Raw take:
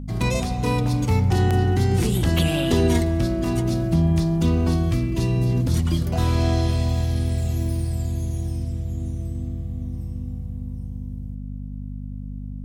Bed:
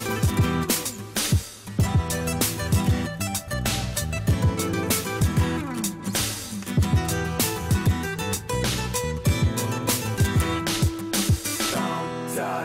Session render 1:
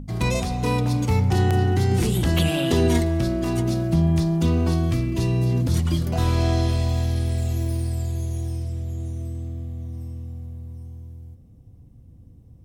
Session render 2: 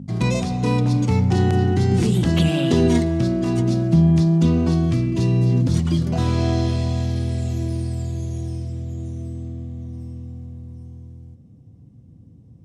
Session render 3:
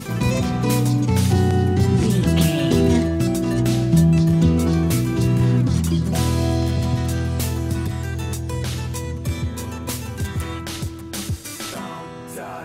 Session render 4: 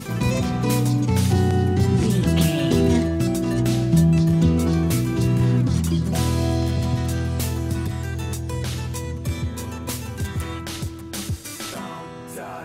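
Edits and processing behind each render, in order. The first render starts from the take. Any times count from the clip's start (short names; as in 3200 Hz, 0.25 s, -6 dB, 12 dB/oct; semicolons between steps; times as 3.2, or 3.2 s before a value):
de-hum 50 Hz, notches 5
Chebyshev band-pass 170–7100 Hz, order 2; low shelf 200 Hz +12 dB
add bed -5 dB
gain -1.5 dB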